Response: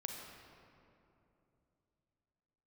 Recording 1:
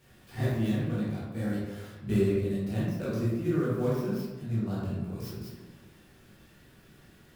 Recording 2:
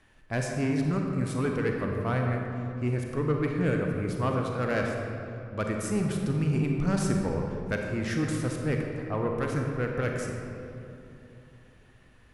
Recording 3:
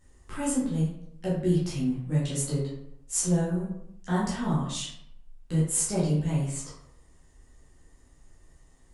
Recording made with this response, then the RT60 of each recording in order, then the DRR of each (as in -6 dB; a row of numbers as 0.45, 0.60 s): 2; 1.3, 2.9, 0.75 s; -8.5, 1.0, -9.0 dB